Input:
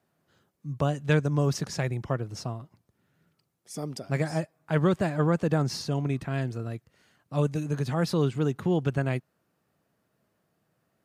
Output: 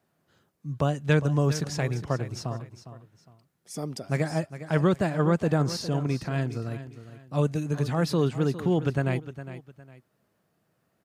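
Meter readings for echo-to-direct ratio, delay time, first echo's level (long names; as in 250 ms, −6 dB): −12.5 dB, 408 ms, −13.0 dB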